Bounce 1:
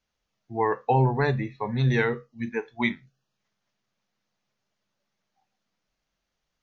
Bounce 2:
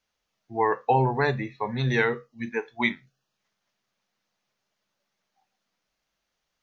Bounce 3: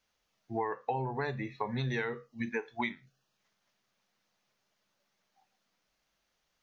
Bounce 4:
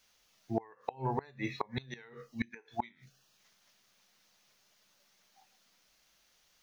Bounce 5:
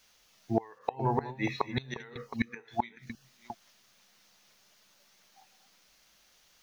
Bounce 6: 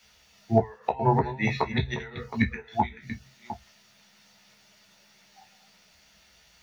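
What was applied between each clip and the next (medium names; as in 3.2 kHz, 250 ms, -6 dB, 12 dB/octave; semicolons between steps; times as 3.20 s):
bass shelf 260 Hz -8 dB; trim +2.5 dB
compression 6:1, threshold -32 dBFS, peak gain reduction 14.5 dB; trim +1 dB
treble shelf 2.5 kHz +9.5 dB; inverted gate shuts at -23 dBFS, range -26 dB; trim +4 dB
chunks repeated in reverse 394 ms, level -12.5 dB; trim +5 dB
reverberation RT60 0.10 s, pre-delay 13 ms, DRR 3 dB; trim -2 dB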